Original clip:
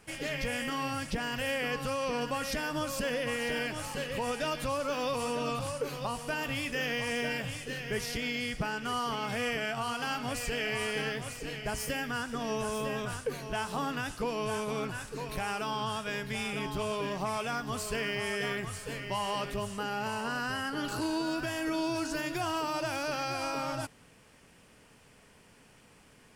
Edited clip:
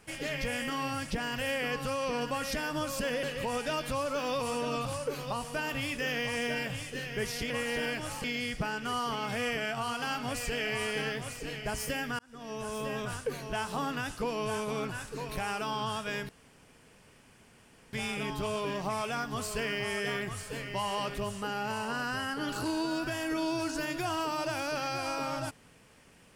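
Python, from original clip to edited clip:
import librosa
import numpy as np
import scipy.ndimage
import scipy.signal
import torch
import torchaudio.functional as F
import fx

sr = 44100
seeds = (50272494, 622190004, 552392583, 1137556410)

y = fx.edit(x, sr, fx.move(start_s=3.23, length_s=0.74, to_s=8.24),
    fx.fade_in_span(start_s=12.19, length_s=1.07, curve='qsin'),
    fx.insert_room_tone(at_s=16.29, length_s=1.64), tone=tone)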